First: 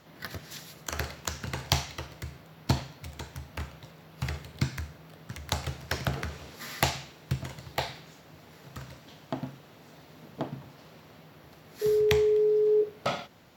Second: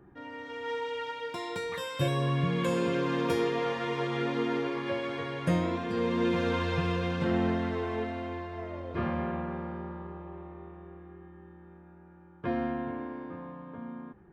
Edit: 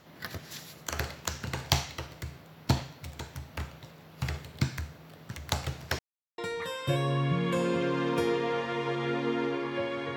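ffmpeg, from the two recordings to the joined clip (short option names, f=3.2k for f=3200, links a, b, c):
-filter_complex "[0:a]apad=whole_dur=10.16,atrim=end=10.16,asplit=2[a][b];[a]atrim=end=5.99,asetpts=PTS-STARTPTS,afade=t=out:st=5.986:d=0.004:c=hsin[c];[b]atrim=start=5.99:end=6.38,asetpts=PTS-STARTPTS,volume=0[d];[1:a]atrim=start=1.5:end=5.28,asetpts=PTS-STARTPTS,afade=t=in:d=0.004:c=hsin[e];[c][d][e]concat=n=3:v=0:a=1"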